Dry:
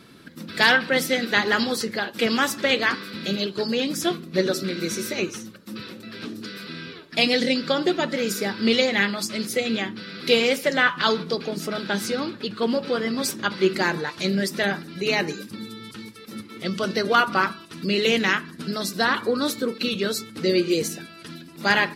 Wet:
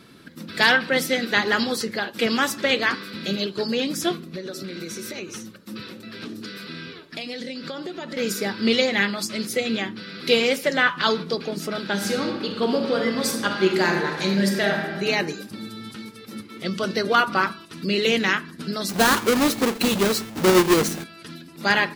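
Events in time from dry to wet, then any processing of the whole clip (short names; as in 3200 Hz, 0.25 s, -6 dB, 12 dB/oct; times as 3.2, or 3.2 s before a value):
4.31–8.17 compressor 8:1, threshold -29 dBFS
11.92–14.82 reverb throw, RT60 1.4 s, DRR 2 dB
15.48–15.93 reverb throw, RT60 2.9 s, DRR 5 dB
18.89–21.04 half-waves squared off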